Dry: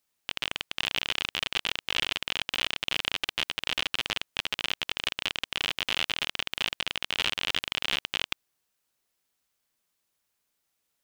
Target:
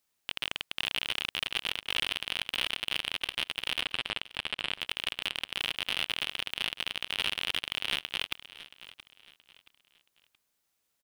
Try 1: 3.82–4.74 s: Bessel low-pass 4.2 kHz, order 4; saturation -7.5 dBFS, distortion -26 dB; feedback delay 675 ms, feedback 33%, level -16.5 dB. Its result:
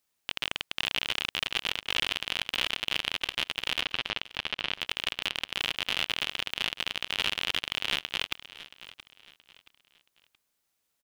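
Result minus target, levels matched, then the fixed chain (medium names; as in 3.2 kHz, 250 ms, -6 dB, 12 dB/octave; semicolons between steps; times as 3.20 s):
saturation: distortion -11 dB
3.82–4.74 s: Bessel low-pass 4.2 kHz, order 4; saturation -15 dBFS, distortion -15 dB; feedback delay 675 ms, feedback 33%, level -16.5 dB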